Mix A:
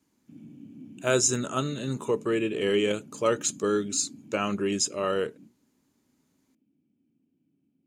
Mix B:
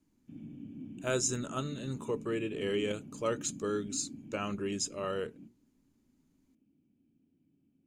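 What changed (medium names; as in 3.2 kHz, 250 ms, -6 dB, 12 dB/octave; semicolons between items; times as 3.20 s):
speech -8.0 dB; master: remove high-pass 120 Hz 12 dB/octave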